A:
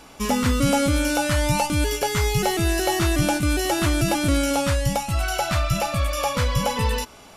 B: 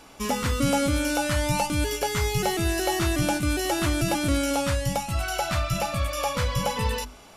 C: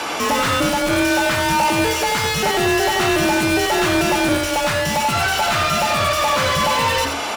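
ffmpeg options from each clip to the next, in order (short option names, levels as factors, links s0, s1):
-af "bandreject=f=50:t=h:w=6,bandreject=f=100:t=h:w=6,bandreject=f=150:t=h:w=6,bandreject=f=200:t=h:w=6,bandreject=f=250:t=h:w=6,volume=0.708"
-filter_complex "[0:a]asplit=2[s0][s1];[s1]highpass=f=720:p=1,volume=70.8,asoftclip=type=tanh:threshold=0.266[s2];[s0][s2]amix=inputs=2:normalize=0,lowpass=f=3200:p=1,volume=0.501,afreqshift=28,aecho=1:1:86:0.473"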